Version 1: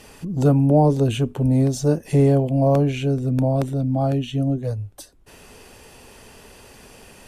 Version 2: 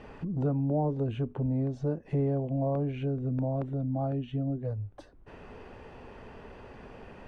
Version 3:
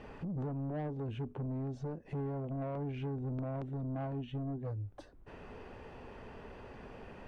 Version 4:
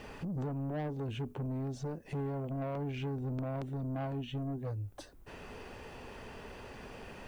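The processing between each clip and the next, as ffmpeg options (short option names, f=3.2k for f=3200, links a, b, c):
-af "lowpass=1.7k,acompressor=threshold=-36dB:ratio=2"
-af "alimiter=level_in=0.5dB:limit=-24dB:level=0:latency=1:release=273,volume=-0.5dB,asoftclip=type=tanh:threshold=-31.5dB,volume=-2dB"
-af "crystalizer=i=4:c=0,volume=1dB"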